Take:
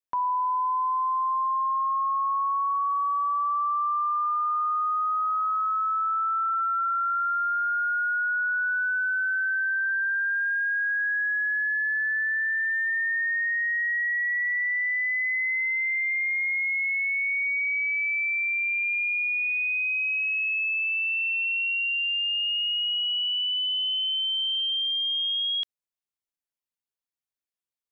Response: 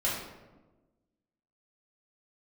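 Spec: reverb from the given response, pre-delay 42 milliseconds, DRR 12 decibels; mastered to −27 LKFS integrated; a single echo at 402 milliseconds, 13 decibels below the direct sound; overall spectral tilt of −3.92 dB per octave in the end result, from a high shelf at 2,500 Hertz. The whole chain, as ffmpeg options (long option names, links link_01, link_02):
-filter_complex "[0:a]highshelf=frequency=2500:gain=3,aecho=1:1:402:0.224,asplit=2[link_01][link_02];[1:a]atrim=start_sample=2205,adelay=42[link_03];[link_02][link_03]afir=irnorm=-1:irlink=0,volume=-20.5dB[link_04];[link_01][link_04]amix=inputs=2:normalize=0,volume=-4.5dB"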